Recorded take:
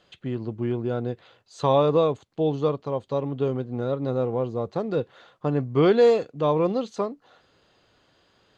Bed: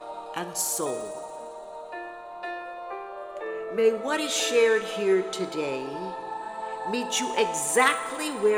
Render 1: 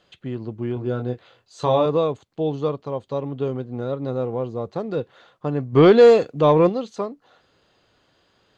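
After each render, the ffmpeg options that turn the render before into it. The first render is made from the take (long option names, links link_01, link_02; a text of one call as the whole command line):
ffmpeg -i in.wav -filter_complex "[0:a]asettb=1/sr,asplit=3[link_01][link_02][link_03];[link_01]atrim=end=0.744[link_04];[link_02]atrim=start=0.74:end=1.86,asetpts=PTS-STARTPTS,afade=type=in:duration=0.004:curve=qsin,afade=type=out:start_time=1.116:duration=0.004:curve=qsin,asplit=2[link_05][link_06];[link_06]adelay=24,volume=-5dB[link_07];[link_05][link_07]amix=inputs=2:normalize=0,atrim=end_sample=49392[link_08];[link_03]atrim=start=1.856[link_09];[link_04][link_08]acrossfade=duration=0.004:curve1=hsin:curve2=qsin[link_10];[link_10][link_09]acrossfade=duration=0.004:curve1=qsin:curve2=hsin,asplit=3[link_11][link_12][link_13];[link_11]afade=type=out:start_time=5.72:duration=0.02[link_14];[link_12]acontrast=84,afade=type=in:start_time=5.72:duration=0.02,afade=type=out:start_time=6.68:duration=0.02[link_15];[link_13]afade=type=in:start_time=6.68:duration=0.02[link_16];[link_14][link_15][link_16]amix=inputs=3:normalize=0" out.wav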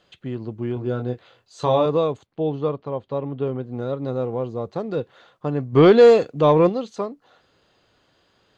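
ffmpeg -i in.wav -filter_complex "[0:a]asettb=1/sr,asplit=3[link_01][link_02][link_03];[link_01]atrim=end=2.264[link_04];[link_02]atrim=start=2.26:end=3.64,asetpts=PTS-STARTPTS,afade=type=in:duration=0.004:curve=qsin,afade=type=out:start_time=1.376:duration=0.004:curve=qsin,lowpass=3200[link_05];[link_03]atrim=start=3.636[link_06];[link_04][link_05]acrossfade=duration=0.004:curve1=hsin:curve2=qsin[link_07];[link_07][link_06]acrossfade=duration=0.004:curve1=qsin:curve2=hsin" out.wav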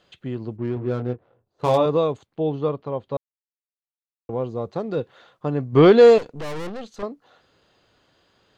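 ffmpeg -i in.wav -filter_complex "[0:a]asplit=3[link_01][link_02][link_03];[link_01]afade=type=out:start_time=0.56:duration=0.02[link_04];[link_02]adynamicsmooth=sensitivity=4:basefreq=540,afade=type=in:start_time=0.56:duration=0.02,afade=type=out:start_time=1.76:duration=0.02[link_05];[link_03]afade=type=in:start_time=1.76:duration=0.02[link_06];[link_04][link_05][link_06]amix=inputs=3:normalize=0,asettb=1/sr,asplit=3[link_07][link_08][link_09];[link_07]atrim=end=6.184[link_10];[link_08]atrim=start=6.18:end=7.03,asetpts=PTS-STARTPTS,afade=type=in:duration=0.004:curve=qsin,afade=type=out:start_time=0.846:duration=0.004:curve=qsin,aeval=exprs='(tanh(31.6*val(0)+0.7)-tanh(0.7))/31.6':channel_layout=same[link_11];[link_09]atrim=start=7.026[link_12];[link_10][link_11]acrossfade=duration=0.004:curve1=hsin:curve2=qsin[link_13];[link_13][link_12]acrossfade=duration=0.004:curve1=qsin:curve2=hsin,asplit=3[link_14][link_15][link_16];[link_14]atrim=end=3.17,asetpts=PTS-STARTPTS,afade=type=out:start_time=3.166:duration=0.004:curve=hsin[link_17];[link_15]atrim=start=3.17:end=4.29,asetpts=PTS-STARTPTS,volume=0[link_18];[link_16]atrim=start=4.29,asetpts=PTS-STARTPTS,afade=type=in:duration=0.004:curve=hsin[link_19];[link_17][link_18][link_19]concat=n=3:v=0:a=1" out.wav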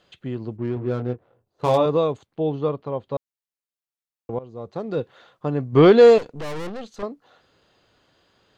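ffmpeg -i in.wav -filter_complex "[0:a]asplit=2[link_01][link_02];[link_01]atrim=end=4.39,asetpts=PTS-STARTPTS,afade=type=out:start_time=4.386:duration=0.004:curve=hsin:silence=0.141254[link_03];[link_02]atrim=start=4.39,asetpts=PTS-STARTPTS,afade=type=in:duration=0.57:silence=0.141254[link_04];[link_03][link_04]concat=n=2:v=0:a=1" out.wav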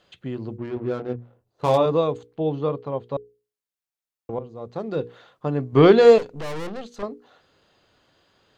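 ffmpeg -i in.wav -af "bandreject=frequency=60:width_type=h:width=6,bandreject=frequency=120:width_type=h:width=6,bandreject=frequency=180:width_type=h:width=6,bandreject=frequency=240:width_type=h:width=6,bandreject=frequency=300:width_type=h:width=6,bandreject=frequency=360:width_type=h:width=6,bandreject=frequency=420:width_type=h:width=6,bandreject=frequency=480:width_type=h:width=6" out.wav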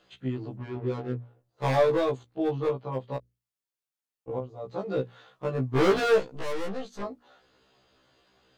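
ffmpeg -i in.wav -af "asoftclip=type=hard:threshold=-17dB,afftfilt=real='re*1.73*eq(mod(b,3),0)':imag='im*1.73*eq(mod(b,3),0)':win_size=2048:overlap=0.75" out.wav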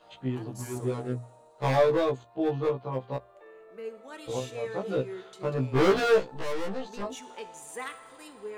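ffmpeg -i in.wav -i bed.wav -filter_complex "[1:a]volume=-17.5dB[link_01];[0:a][link_01]amix=inputs=2:normalize=0" out.wav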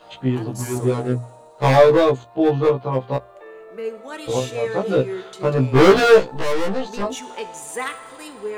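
ffmpeg -i in.wav -af "volume=10.5dB" out.wav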